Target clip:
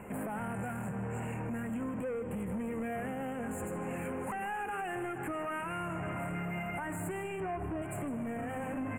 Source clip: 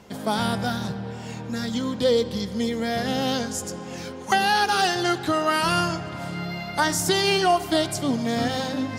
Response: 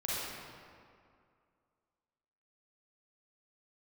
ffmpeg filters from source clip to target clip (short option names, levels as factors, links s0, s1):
-filter_complex "[0:a]asettb=1/sr,asplit=3[s0][s1][s2];[s0]atrim=end=7.404[s3];[s1]atrim=start=7.4:end=7.82,asetpts=PTS-STARTPTS,afade=t=in:d=0.004:c=qsin,afade=t=out:st=0.416:d=0.004:c=qsin,aemphasis=mode=reproduction:type=riaa[s4];[s2]atrim=start=7.816[s5];[s3][s4]acrossfade=d=0.004:c1=hsin:c2=qsin[s6];[s6][s5]acrossfade=d=0.004:c1=qsin:c2=hsin,acrossover=split=4800[s7][s8];[s8]acompressor=threshold=0.0126:ratio=4:attack=1:release=60[s9];[s7][s9]amix=inputs=2:normalize=0,asettb=1/sr,asplit=3[s10][s11][s12];[s10]atrim=end=0.544[s13];[s11]atrim=start=0.54:end=1.2,asetpts=PTS-STARTPTS,afade=t=in:d=0.004:c=qsin,afade=t=out:st=0.656:d=0.004:c=qsin,equalizer=f=7000:t=o:w=0.69:g=10[s14];[s12]atrim=start=1.196[s15];[s13][s14]acrossfade=d=0.004:c1=hsin:c2=qsin[s16];[s16][s15]acrossfade=d=0.004:c1=qsin:c2=hsin,acompressor=threshold=0.0398:ratio=6,alimiter=level_in=1.5:limit=0.0631:level=0:latency=1:release=88,volume=0.668,asoftclip=type=tanh:threshold=0.0168,asuperstop=centerf=4600:order=12:qfactor=0.94,aecho=1:1:156:0.168,volume=1.41"